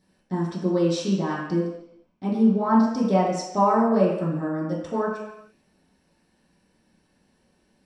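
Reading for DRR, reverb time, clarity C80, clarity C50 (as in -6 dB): -9.0 dB, 0.85 s, 5.0 dB, 2.5 dB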